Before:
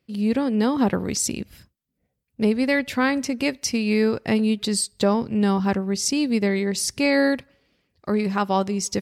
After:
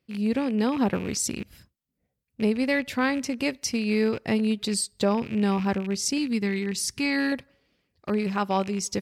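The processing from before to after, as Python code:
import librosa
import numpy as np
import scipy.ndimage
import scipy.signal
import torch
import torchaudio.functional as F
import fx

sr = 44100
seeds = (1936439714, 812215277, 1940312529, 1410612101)

y = fx.rattle_buzz(x, sr, strikes_db=-34.0, level_db=-26.0)
y = fx.peak_eq(y, sr, hz=600.0, db=-14.0, octaves=0.6, at=(6.18, 7.32))
y = F.gain(torch.from_numpy(y), -3.5).numpy()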